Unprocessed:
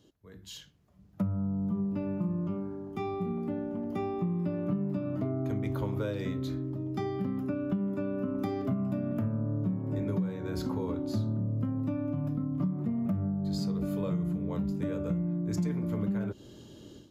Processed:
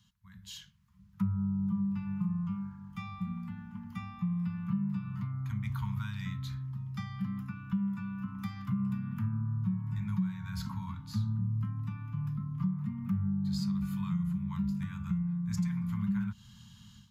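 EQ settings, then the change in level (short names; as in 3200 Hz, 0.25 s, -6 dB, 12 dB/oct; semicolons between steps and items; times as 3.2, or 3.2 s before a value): Chebyshev band-stop 210–950 Hz, order 4; 0.0 dB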